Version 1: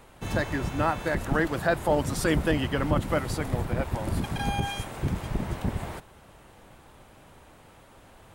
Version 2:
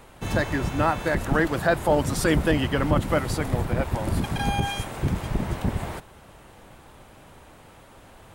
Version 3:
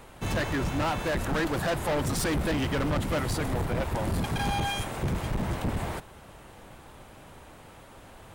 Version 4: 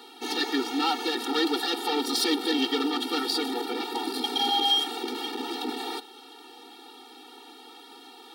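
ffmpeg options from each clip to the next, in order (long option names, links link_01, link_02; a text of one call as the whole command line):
ffmpeg -i in.wav -af "acontrast=66,volume=-3dB" out.wav
ffmpeg -i in.wav -af "volume=24.5dB,asoftclip=hard,volume=-24.5dB" out.wav
ffmpeg -i in.wav -filter_complex "[0:a]acrossover=split=450|4400[link_01][link_02][link_03];[link_02]aexciter=amount=10.3:drive=3.2:freq=3300[link_04];[link_01][link_04][link_03]amix=inputs=3:normalize=0,afftfilt=real='re*eq(mod(floor(b*sr/1024/240),2),1)':imag='im*eq(mod(floor(b*sr/1024/240),2),1)':win_size=1024:overlap=0.75,volume=4dB" out.wav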